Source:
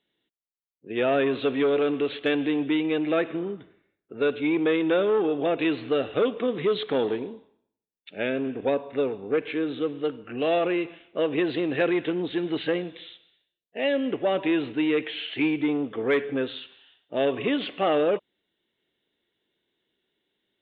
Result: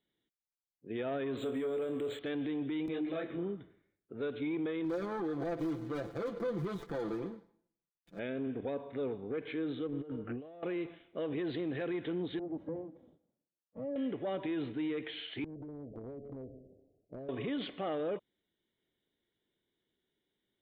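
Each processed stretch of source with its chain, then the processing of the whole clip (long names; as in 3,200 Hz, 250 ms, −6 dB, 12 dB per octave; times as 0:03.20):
0:01.37–0:02.19: parametric band 530 Hz +4 dB 0.4 octaves + flutter between parallel walls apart 4.4 metres, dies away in 0.2 s + linearly interpolated sample-rate reduction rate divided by 4×
0:02.86–0:03.39: bass and treble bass +2 dB, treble +5 dB + upward compression, threshold −25 dBFS + micro pitch shift up and down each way 33 cents
0:04.84–0:08.19: running median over 41 samples + parametric band 1,100 Hz +5 dB 1 octave + comb filter 5.9 ms, depth 77%
0:09.87–0:10.63: low-pass filter 1,200 Hz 6 dB per octave + compressor whose output falls as the input rises −37 dBFS
0:12.39–0:13.96: lower of the sound and its delayed copy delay 3.6 ms + downward compressor 2.5 to 1, threshold −28 dBFS + flat-topped band-pass 290 Hz, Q 0.61
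0:15.44–0:17.29: Butterworth low-pass 640 Hz 72 dB per octave + downward compressor 3 to 1, threshold −32 dBFS + every bin compressed towards the loudest bin 2 to 1
whole clip: low-shelf EQ 210 Hz +9 dB; notch filter 2,700 Hz, Q 8.1; brickwall limiter −20.5 dBFS; level −8.5 dB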